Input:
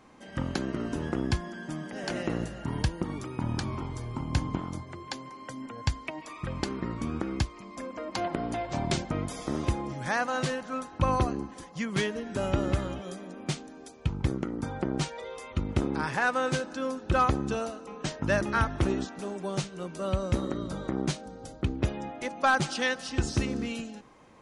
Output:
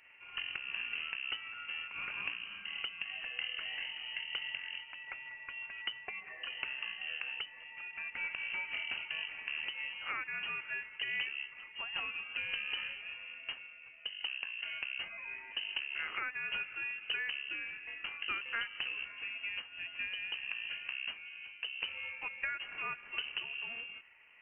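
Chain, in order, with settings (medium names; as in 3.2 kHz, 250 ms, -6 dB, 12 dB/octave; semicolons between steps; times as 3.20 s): median filter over 15 samples; bass shelf 210 Hz -10.5 dB; compression 4:1, threshold -33 dBFS, peak gain reduction 11.5 dB; frequency inversion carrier 3 kHz; random flutter of the level, depth 50%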